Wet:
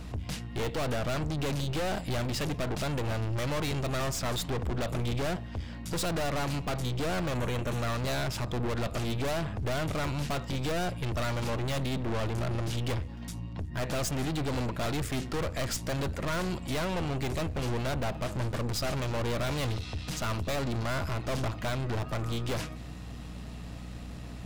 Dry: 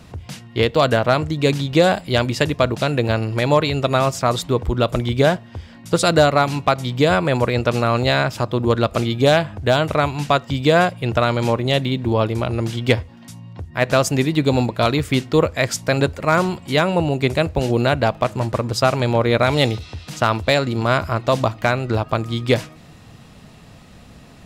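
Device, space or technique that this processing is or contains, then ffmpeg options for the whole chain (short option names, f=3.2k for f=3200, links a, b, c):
valve amplifier with mains hum: -filter_complex "[0:a]aeval=exprs='(tanh(31.6*val(0)+0.5)-tanh(0.5))/31.6':c=same,aeval=exprs='val(0)+0.00891*(sin(2*PI*60*n/s)+sin(2*PI*2*60*n/s)/2+sin(2*PI*3*60*n/s)/3+sin(2*PI*4*60*n/s)/4+sin(2*PI*5*60*n/s)/5)':c=same,asettb=1/sr,asplit=3[a][b][c];[a]atrim=end=7.344[d];[b]atrim=start=7.34:end=7.82,asetpts=PTS-STARTPTS,afade=t=in:d=0.004:c=qsin,afade=t=out:st=0.476:d=0.004:c=qsin,equalizer=f=4.9k:t=o:w=0.26:g=-12[e];[c]atrim=start=7.816[f];[d][e]acrossfade=d=0.004:c1=hsin:c2=qsin[g];[g][f]acrossfade=d=0.004:c1=qsin:c2=hsin"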